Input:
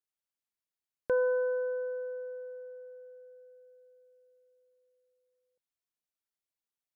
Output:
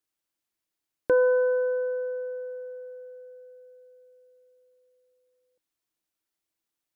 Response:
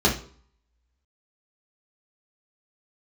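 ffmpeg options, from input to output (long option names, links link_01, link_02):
-af "equalizer=frequency=320:width=7.7:gain=11,volume=6.5dB"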